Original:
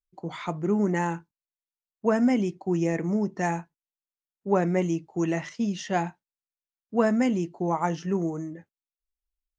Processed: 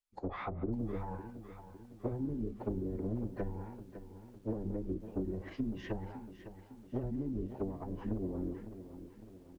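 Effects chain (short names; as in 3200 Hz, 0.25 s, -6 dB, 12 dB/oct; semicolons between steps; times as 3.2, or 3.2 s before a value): octaver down 2 oct, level -2 dB; notches 60/120/180 Hz; compressor 5:1, threshold -28 dBFS, peak gain reduction 11 dB; speakerphone echo 0.17 s, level -18 dB; one-sided clip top -25 dBFS, bottom -22.5 dBFS; low shelf 260 Hz -8.5 dB; tube stage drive 26 dB, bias 0.65; formant-preserving pitch shift -10 st; treble ducked by the level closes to 300 Hz, closed at -35 dBFS; lo-fi delay 0.556 s, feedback 55%, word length 11-bit, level -12 dB; gain +4.5 dB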